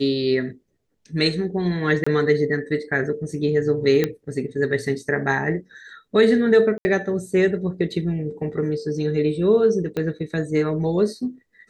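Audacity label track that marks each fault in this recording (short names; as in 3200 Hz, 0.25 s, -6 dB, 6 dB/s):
2.040000	2.060000	gap 25 ms
4.040000	4.040000	pop -8 dBFS
6.780000	6.850000	gap 70 ms
9.970000	9.970000	pop -15 dBFS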